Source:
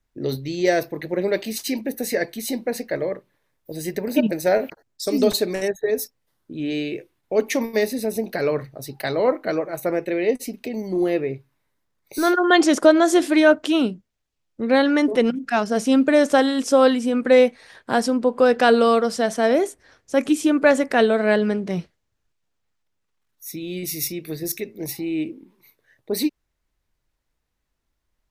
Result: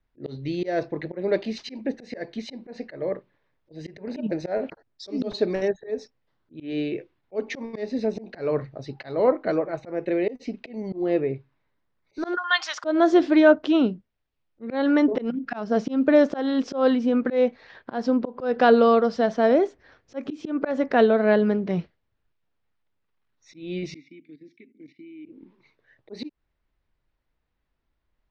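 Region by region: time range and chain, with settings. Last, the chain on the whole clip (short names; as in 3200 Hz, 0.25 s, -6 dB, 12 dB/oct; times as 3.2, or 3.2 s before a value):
12.37–12.84 HPF 1000 Hz 24 dB/oct + tilt +2.5 dB/oct
23.94–25.26 level quantiser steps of 16 dB + vowel filter i
whole clip: Bessel low-pass 3100 Hz, order 8; dynamic EQ 2300 Hz, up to -5 dB, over -38 dBFS, Q 1.1; auto swell 0.198 s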